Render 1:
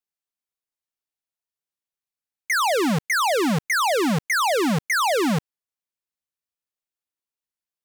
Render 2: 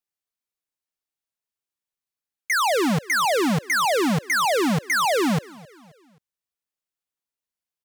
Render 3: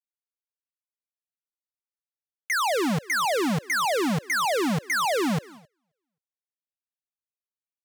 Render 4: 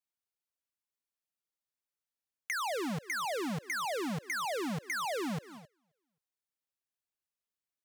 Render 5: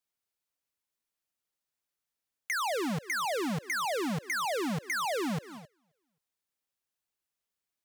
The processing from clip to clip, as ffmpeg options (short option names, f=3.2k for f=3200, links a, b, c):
-af "aecho=1:1:265|530|795:0.0708|0.0333|0.0156"
-af "agate=range=-26dB:threshold=-42dB:ratio=16:detection=peak,volume=-3.5dB"
-af "acompressor=threshold=-36dB:ratio=6"
-af "asoftclip=type=tanh:threshold=-28.5dB,volume=4dB"